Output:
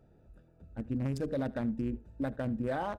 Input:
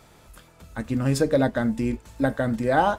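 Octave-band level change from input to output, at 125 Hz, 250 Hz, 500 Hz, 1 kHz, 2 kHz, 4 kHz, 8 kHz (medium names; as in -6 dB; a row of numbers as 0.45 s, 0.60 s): -9.0 dB, -9.5 dB, -12.5 dB, -15.0 dB, -15.5 dB, -16.0 dB, under -20 dB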